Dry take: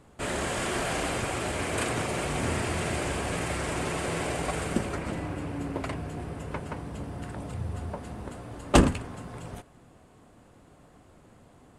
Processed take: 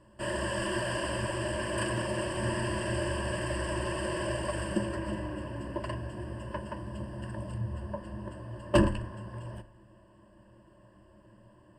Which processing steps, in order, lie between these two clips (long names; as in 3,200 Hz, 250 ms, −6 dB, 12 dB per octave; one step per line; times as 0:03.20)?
EQ curve with evenly spaced ripples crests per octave 1.3, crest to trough 18 dB
soft clipping −6 dBFS, distortion −20 dB
high-shelf EQ 3,200 Hz −6 dB, from 0:07.58 −11 dB
feedback delay network reverb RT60 0.7 s, high-frequency decay 0.55×, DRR 13 dB
level −5.5 dB